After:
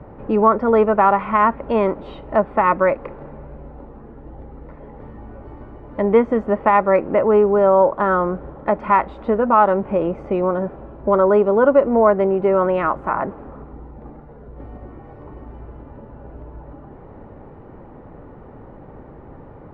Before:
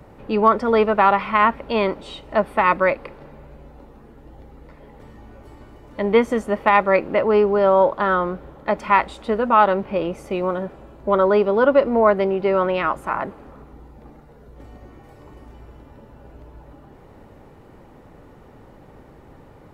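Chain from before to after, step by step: LPF 1400 Hz 12 dB/oct; in parallel at 0 dB: compressor, threshold -25 dBFS, peak gain reduction 14.5 dB

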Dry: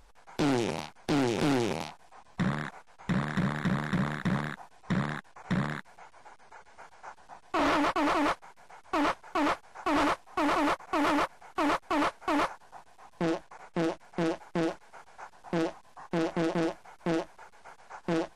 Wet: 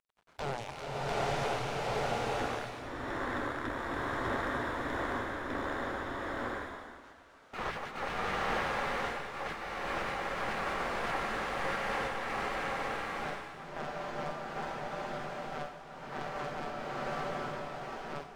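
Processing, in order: gliding pitch shift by -2 st starting unshifted; high shelf 2000 Hz -9 dB; spectral gate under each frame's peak -10 dB weak; crossover distortion -57.5 dBFS; bloom reverb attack 0.88 s, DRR -7 dB; gain -2 dB

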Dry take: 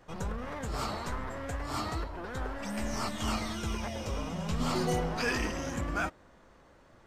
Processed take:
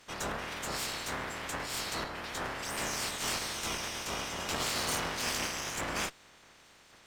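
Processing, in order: spectral limiter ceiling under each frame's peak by 26 dB; one-sided clip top -37.5 dBFS

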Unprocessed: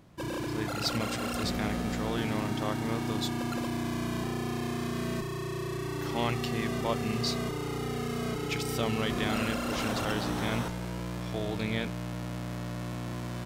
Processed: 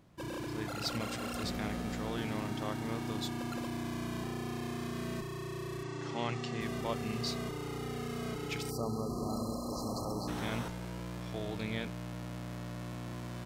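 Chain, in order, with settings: 5.83–6.61 Chebyshev band-pass 110–7300 Hz, order 3; 8.7–10.28 spectral delete 1300–4000 Hz; gain -5.5 dB

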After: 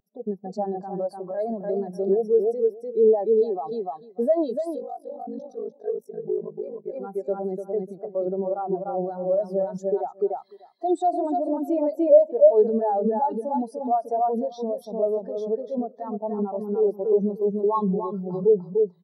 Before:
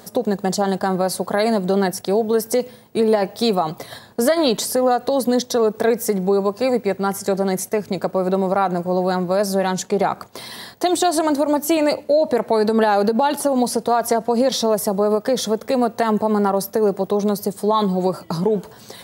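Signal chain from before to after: low shelf 170 Hz -10 dB; feedback echo 0.297 s, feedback 33%, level -3.5 dB; limiter -14.5 dBFS, peak gain reduction 10 dB; 4.75–6.96 ring modulator 25 Hz; notch 510 Hz, Q 15; spectral expander 2.5:1; gain +7 dB

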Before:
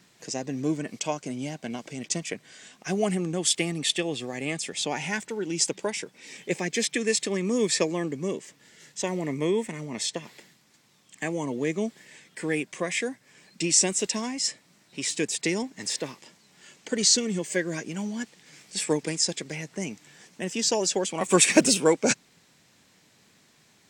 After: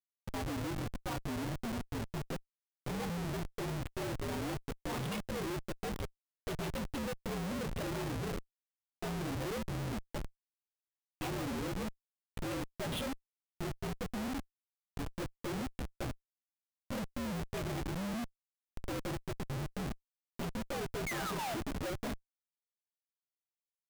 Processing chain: inharmonic rescaling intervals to 121%; compressor 12:1, threshold -29 dBFS, peak gain reduction 14.5 dB; soft clip -25.5 dBFS, distortion -20 dB; painted sound fall, 21.06–21.55, 630–2300 Hz -37 dBFS; resonator 57 Hz, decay 0.89 s, harmonics all, mix 50%; downsampling 8000 Hz; Schmitt trigger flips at -43 dBFS; gain +6 dB

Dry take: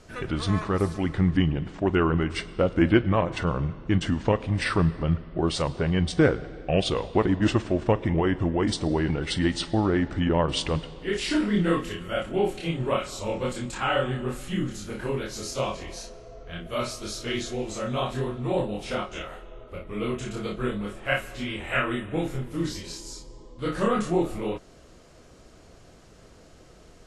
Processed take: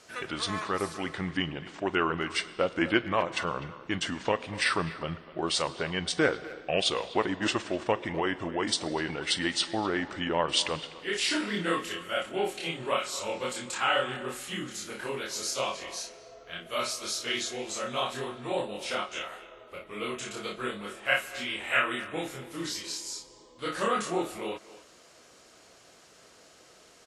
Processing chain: HPF 700 Hz 6 dB/oct; high shelf 2100 Hz +4 dB; speakerphone echo 0.25 s, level -16 dB

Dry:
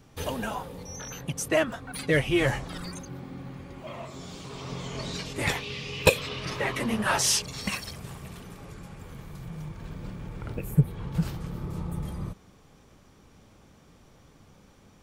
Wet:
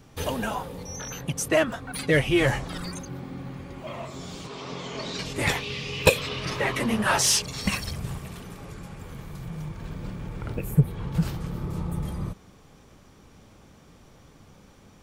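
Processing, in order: 4.47–5.19 three-band isolator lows -13 dB, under 180 Hz, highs -15 dB, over 7000 Hz; in parallel at -7 dB: soft clip -19.5 dBFS, distortion -10 dB; 7.65–8.19 on the sum: low shelf 150 Hz +9 dB

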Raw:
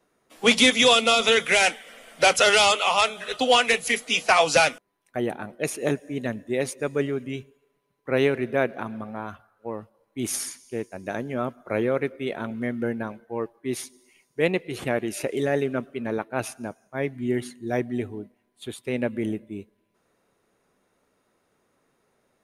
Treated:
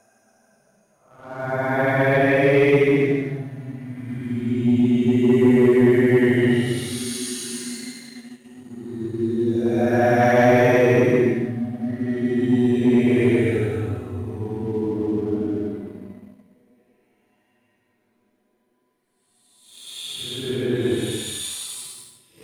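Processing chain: Paulstretch 11×, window 0.10 s, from 16.8; sample leveller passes 1; gain +6 dB

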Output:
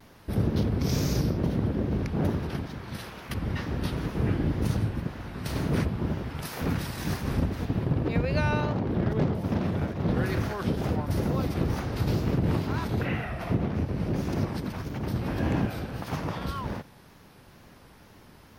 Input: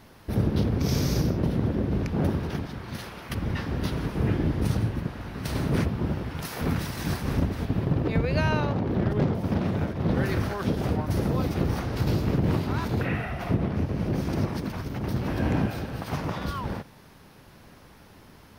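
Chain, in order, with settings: wow and flutter 82 cents; gain -1.5 dB

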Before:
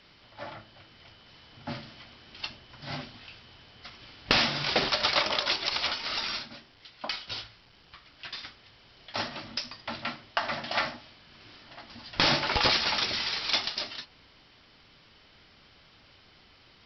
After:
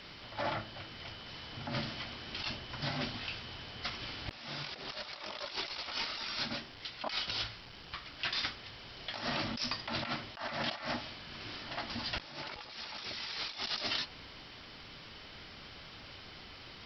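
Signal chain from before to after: negative-ratio compressor -40 dBFS, ratio -1

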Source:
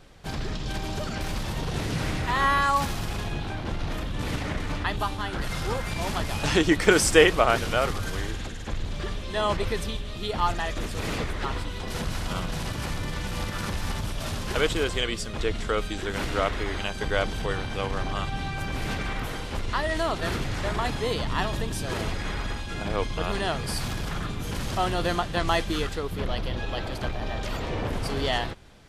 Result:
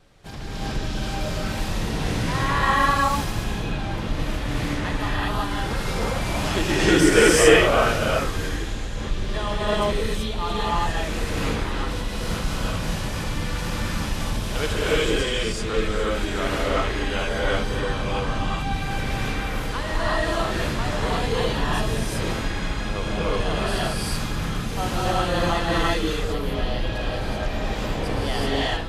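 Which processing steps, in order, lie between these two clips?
vibrato 4 Hz 29 cents; non-linear reverb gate 0.41 s rising, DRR -8 dB; gain -5 dB

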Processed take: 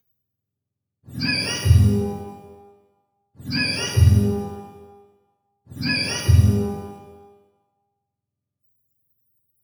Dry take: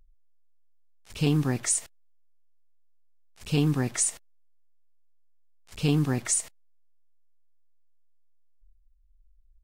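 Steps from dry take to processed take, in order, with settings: spectrum mirrored in octaves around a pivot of 850 Hz; shimmer reverb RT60 1.1 s, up +12 st, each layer -8 dB, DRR 1.5 dB; gain +2.5 dB

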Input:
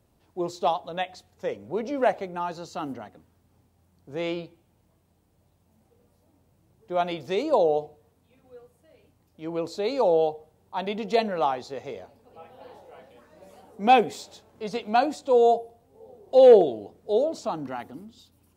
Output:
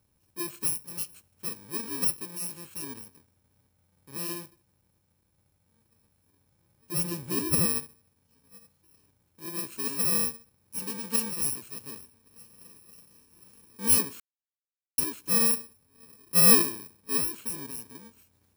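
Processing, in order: FFT order left unsorted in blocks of 64 samples; 6.92–7.66 low shelf 330 Hz +10.5 dB; 14.2–14.98 mute; gain -5 dB

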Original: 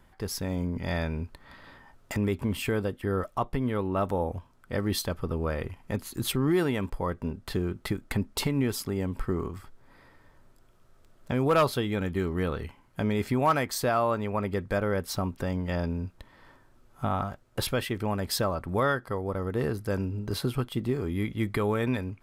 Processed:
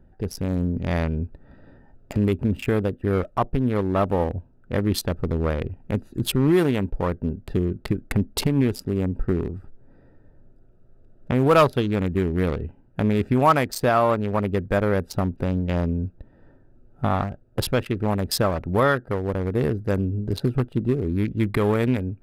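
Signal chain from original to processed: Wiener smoothing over 41 samples; gain +7 dB

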